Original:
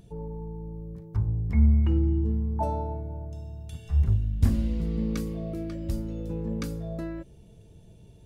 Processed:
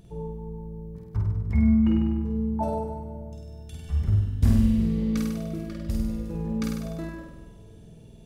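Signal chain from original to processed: flutter echo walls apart 8.5 m, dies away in 1.1 s; on a send at -17.5 dB: reverb RT60 2.9 s, pre-delay 5 ms

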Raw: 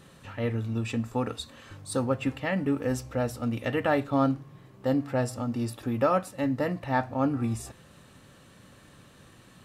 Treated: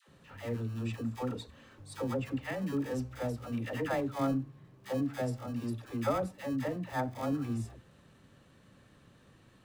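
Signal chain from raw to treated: high shelf 6500 Hz -8 dB; in parallel at -10 dB: sample-rate reducer 1400 Hz, jitter 0%; on the sum: dispersion lows, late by 90 ms, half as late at 570 Hz; gain -8 dB

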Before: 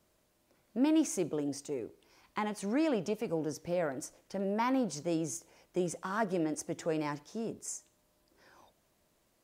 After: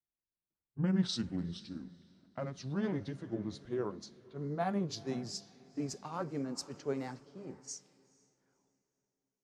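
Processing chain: gliding pitch shift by -10 st ending unshifted; low-pass opened by the level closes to 2300 Hz, open at -31 dBFS; on a send: diffused feedback echo 0.489 s, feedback 54%, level -14.5 dB; on the sum: three-band expander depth 70%; gain -3.5 dB

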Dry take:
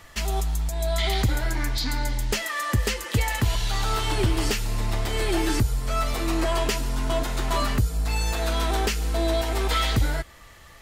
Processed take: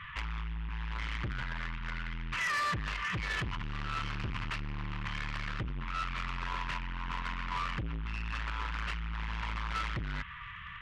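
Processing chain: CVSD 16 kbps; FFT band-reject 190–930 Hz; limiter -24 dBFS, peak gain reduction 10.5 dB; soft clip -35.5 dBFS, distortion -10 dB; low shelf 64 Hz -10.5 dB; gain +6.5 dB

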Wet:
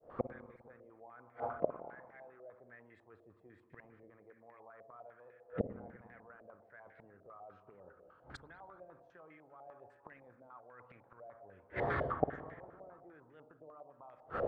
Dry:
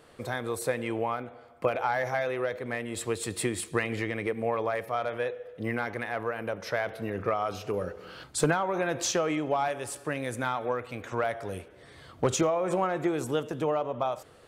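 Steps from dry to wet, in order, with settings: opening faded in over 0.84 s; reverse; compressor 10:1, threshold -36 dBFS, peak gain reduction 17 dB; reverse; flipped gate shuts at -37 dBFS, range -37 dB; on a send at -7 dB: air absorption 280 m + reverb RT60 1.7 s, pre-delay 50 ms; on the sum: stepped low-pass 10 Hz 620–1900 Hz; gain +15 dB

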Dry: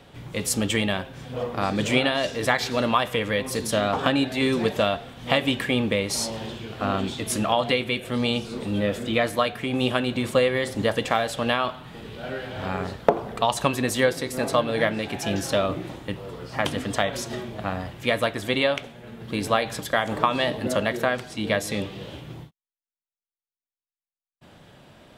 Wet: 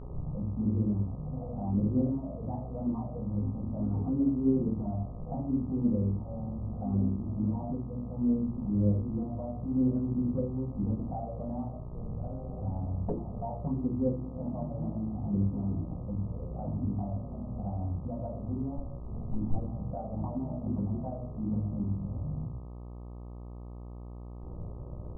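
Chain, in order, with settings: 18.77–19.56 minimum comb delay 0.91 ms; shoebox room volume 32 m³, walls mixed, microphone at 1 m; upward compressor, threshold -14 dBFS; steep low-pass 770 Hz 48 dB/oct; low shelf 240 Hz -2 dB; gate -30 dBFS, range -13 dB; bell 570 Hz -12 dB 1.7 oct; envelope flanger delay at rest 2.8 ms, full sweep at -14 dBFS; buzz 60 Hz, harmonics 21, -37 dBFS -7 dB/oct; gain -6 dB

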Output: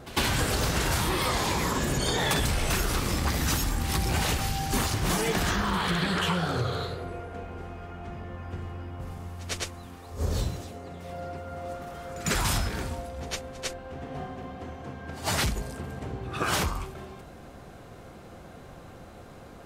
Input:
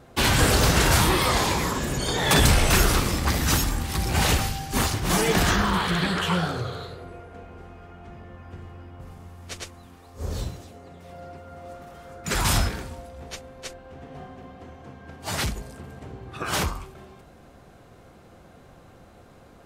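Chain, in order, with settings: compressor 10:1, threshold -27 dBFS, peak gain reduction 14 dB; pre-echo 0.102 s -18.5 dB; gain +4 dB

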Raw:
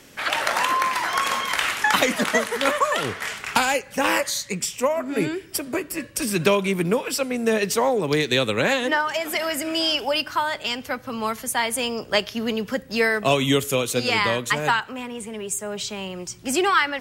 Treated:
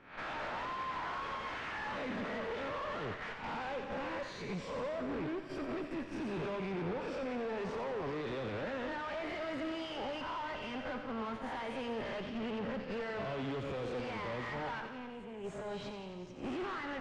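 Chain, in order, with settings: spectral swells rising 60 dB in 0.52 s; gate -27 dBFS, range -13 dB; high shelf 4900 Hz -11 dB; compressor 2.5:1, threshold -28 dBFS, peak gain reduction 10.5 dB; tube stage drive 40 dB, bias 0.65; tape spacing loss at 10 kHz 33 dB; thinning echo 89 ms, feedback 73%, high-pass 980 Hz, level -7 dB; on a send at -12.5 dB: reverb RT60 1.3 s, pre-delay 65 ms; on the sum: gain +5 dB

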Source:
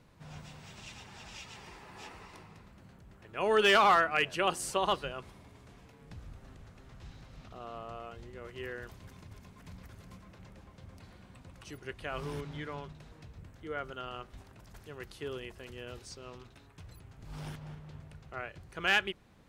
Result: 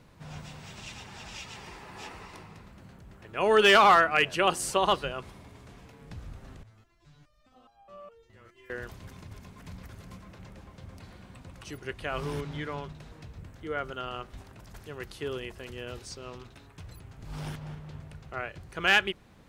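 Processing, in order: 6.63–8.7 stepped resonator 4.8 Hz 110–800 Hz; gain +5 dB

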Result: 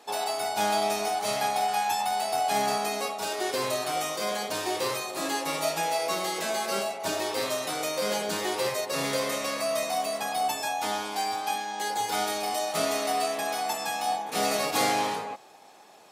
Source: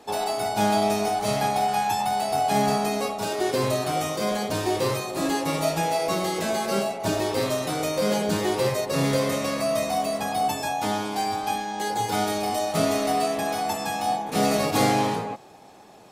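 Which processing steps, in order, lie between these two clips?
HPF 790 Hz 6 dB/oct

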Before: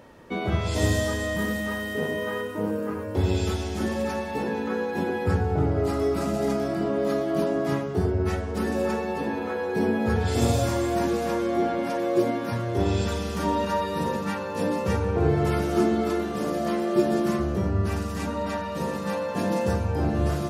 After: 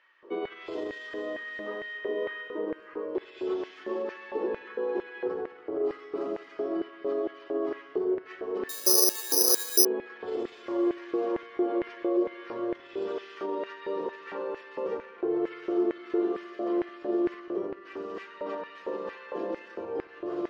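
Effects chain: limiter -20.5 dBFS, peak gain reduction 11.5 dB; small resonant body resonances 350/1100/3000 Hz, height 11 dB, ringing for 35 ms; LFO high-pass square 2.2 Hz 430–1900 Hz; air absorption 230 m; multi-head echo 69 ms, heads first and third, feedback 59%, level -23 dB; 8.69–9.85 careless resampling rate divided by 8×, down filtered, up zero stuff; gain -8.5 dB

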